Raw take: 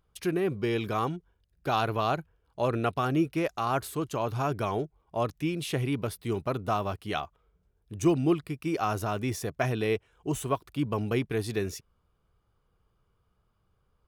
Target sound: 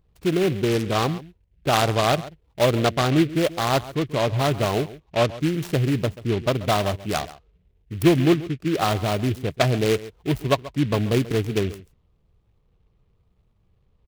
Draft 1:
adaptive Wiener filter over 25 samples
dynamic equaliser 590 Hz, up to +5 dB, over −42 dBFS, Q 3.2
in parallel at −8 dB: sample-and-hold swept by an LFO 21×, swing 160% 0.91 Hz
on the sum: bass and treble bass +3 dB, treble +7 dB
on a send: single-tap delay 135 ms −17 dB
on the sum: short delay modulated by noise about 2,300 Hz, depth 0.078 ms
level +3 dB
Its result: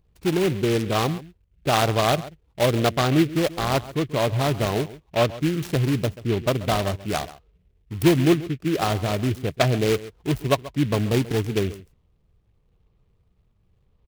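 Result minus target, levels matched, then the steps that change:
sample-and-hold swept by an LFO: distortion +11 dB
change: sample-and-hold swept by an LFO 6×, swing 160% 0.91 Hz

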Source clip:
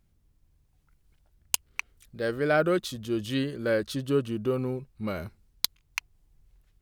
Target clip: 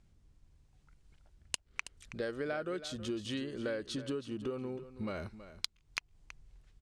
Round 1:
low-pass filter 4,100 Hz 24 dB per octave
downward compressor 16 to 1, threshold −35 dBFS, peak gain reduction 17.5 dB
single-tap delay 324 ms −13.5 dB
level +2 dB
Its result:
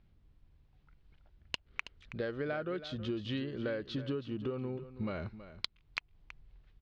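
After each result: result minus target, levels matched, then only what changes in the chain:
8,000 Hz band −15.0 dB; 125 Hz band +4.5 dB
change: low-pass filter 8,700 Hz 24 dB per octave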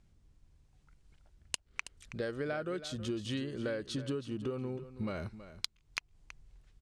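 125 Hz band +4.0 dB
add after downward compressor: dynamic equaliser 130 Hz, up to −6 dB, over −57 dBFS, Q 1.5

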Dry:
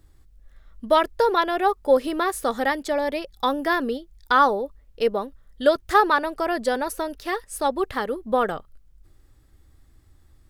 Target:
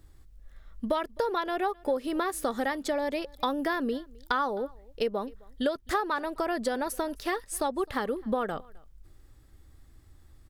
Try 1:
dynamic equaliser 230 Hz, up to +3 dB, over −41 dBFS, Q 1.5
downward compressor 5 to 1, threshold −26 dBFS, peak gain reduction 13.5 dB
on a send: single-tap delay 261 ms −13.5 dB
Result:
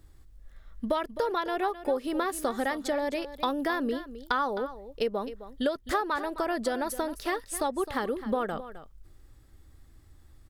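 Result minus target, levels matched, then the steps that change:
echo-to-direct +12 dB
change: single-tap delay 261 ms −25.5 dB

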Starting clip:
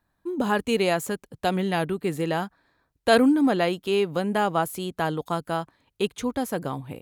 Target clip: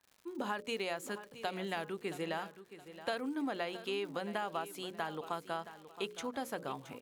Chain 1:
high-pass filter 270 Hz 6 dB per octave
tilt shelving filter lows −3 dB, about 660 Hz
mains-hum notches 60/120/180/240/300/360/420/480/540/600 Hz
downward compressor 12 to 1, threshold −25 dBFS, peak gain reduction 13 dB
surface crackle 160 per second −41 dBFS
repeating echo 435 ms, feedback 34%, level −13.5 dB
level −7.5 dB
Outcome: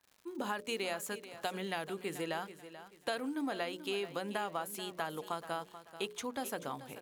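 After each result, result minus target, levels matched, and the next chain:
echo 236 ms early; 8,000 Hz band +5.0 dB
high-pass filter 270 Hz 6 dB per octave
tilt shelving filter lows −3 dB, about 660 Hz
mains-hum notches 60/120/180/240/300/360/420/480/540/600 Hz
downward compressor 12 to 1, threshold −25 dBFS, peak gain reduction 13 dB
surface crackle 160 per second −41 dBFS
repeating echo 671 ms, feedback 34%, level −13.5 dB
level −7.5 dB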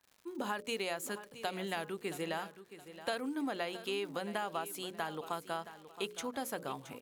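8,000 Hz band +5.0 dB
high-pass filter 270 Hz 6 dB per octave
tilt shelving filter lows −3 dB, about 660 Hz
mains-hum notches 60/120/180/240/300/360/420/480/540/600 Hz
downward compressor 12 to 1, threshold −25 dBFS, peak gain reduction 13 dB
high-shelf EQ 7,400 Hz −9.5 dB
surface crackle 160 per second −41 dBFS
repeating echo 671 ms, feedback 34%, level −13.5 dB
level −7.5 dB

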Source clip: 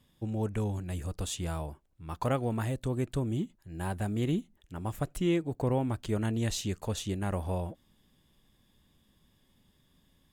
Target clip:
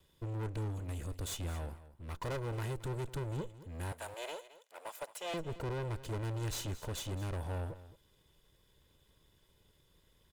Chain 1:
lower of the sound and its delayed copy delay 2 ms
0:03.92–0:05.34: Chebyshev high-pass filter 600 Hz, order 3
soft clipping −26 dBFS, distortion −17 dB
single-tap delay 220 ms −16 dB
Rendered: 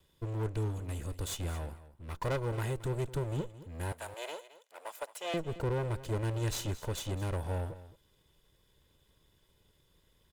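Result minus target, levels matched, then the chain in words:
soft clipping: distortion −8 dB
lower of the sound and its delayed copy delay 2 ms
0:03.92–0:05.34: Chebyshev high-pass filter 600 Hz, order 3
soft clipping −34.5 dBFS, distortion −8 dB
single-tap delay 220 ms −16 dB

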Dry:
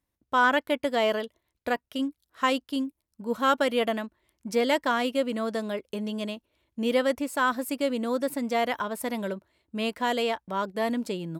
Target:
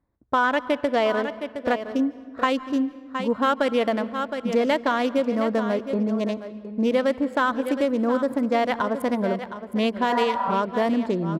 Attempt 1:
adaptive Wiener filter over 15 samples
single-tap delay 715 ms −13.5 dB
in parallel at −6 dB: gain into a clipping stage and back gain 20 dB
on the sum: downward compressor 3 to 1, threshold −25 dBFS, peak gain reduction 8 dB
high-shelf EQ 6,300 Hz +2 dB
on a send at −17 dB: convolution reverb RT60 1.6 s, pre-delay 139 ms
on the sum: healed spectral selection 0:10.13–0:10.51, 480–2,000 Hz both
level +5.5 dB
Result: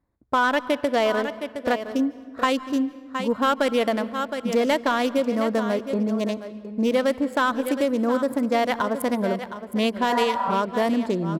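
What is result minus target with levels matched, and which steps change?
gain into a clipping stage and back: distortion +26 dB; 8,000 Hz band +7.0 dB
change: gain into a clipping stage and back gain 12.5 dB
change: high-shelf EQ 6,300 Hz −10 dB

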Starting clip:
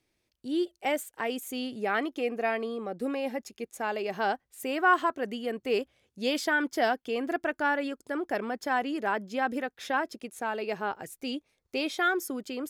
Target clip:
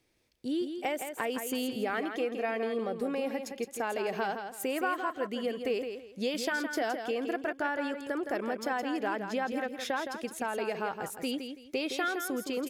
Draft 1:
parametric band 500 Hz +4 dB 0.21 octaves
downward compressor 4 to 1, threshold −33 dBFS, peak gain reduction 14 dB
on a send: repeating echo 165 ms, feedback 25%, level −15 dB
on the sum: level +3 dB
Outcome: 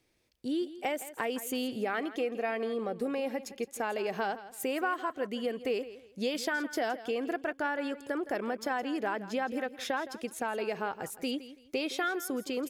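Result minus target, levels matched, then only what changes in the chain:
echo-to-direct −7.5 dB
change: repeating echo 165 ms, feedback 25%, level −7.5 dB

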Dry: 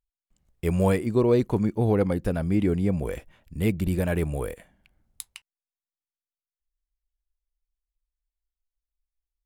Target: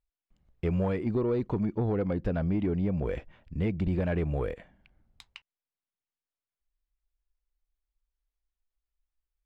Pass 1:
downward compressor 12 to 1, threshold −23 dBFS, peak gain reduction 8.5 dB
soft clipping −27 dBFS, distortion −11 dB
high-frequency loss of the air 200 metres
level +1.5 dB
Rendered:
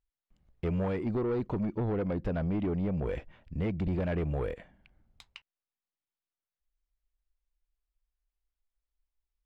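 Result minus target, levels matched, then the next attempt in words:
soft clipping: distortion +7 dB
downward compressor 12 to 1, threshold −23 dBFS, peak gain reduction 8.5 dB
soft clipping −21 dBFS, distortion −18 dB
high-frequency loss of the air 200 metres
level +1.5 dB

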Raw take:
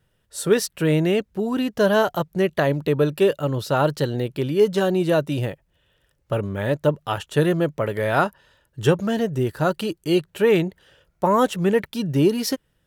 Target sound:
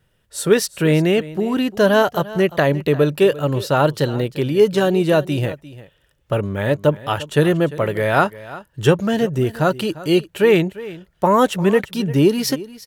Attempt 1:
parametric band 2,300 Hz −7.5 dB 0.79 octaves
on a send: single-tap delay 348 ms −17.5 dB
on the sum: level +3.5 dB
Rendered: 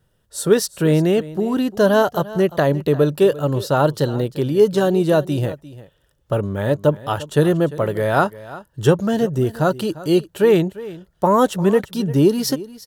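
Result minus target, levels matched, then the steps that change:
2,000 Hz band −4.0 dB
change: parametric band 2,300 Hz +2 dB 0.79 octaves

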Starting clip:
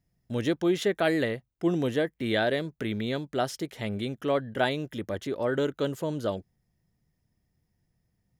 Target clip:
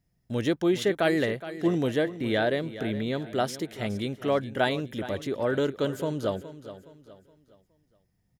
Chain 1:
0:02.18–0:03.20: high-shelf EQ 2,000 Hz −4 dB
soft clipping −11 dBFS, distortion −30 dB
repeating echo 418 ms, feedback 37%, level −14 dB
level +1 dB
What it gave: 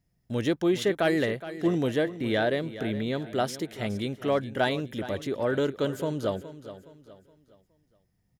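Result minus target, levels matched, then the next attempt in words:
soft clipping: distortion +19 dB
0:02.18–0:03.20: high-shelf EQ 2,000 Hz −4 dB
soft clipping −1 dBFS, distortion −49 dB
repeating echo 418 ms, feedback 37%, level −14 dB
level +1 dB

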